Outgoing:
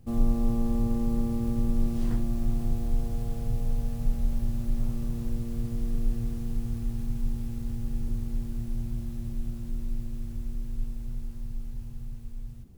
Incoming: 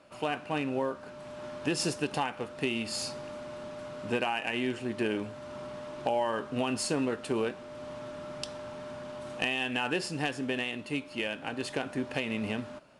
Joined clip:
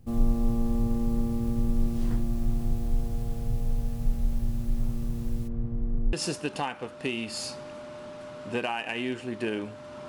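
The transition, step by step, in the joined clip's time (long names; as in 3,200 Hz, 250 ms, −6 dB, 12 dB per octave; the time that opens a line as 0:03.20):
outgoing
0:05.47–0:06.13: low-pass filter 1,400 Hz → 1,100 Hz
0:06.13: continue with incoming from 0:01.71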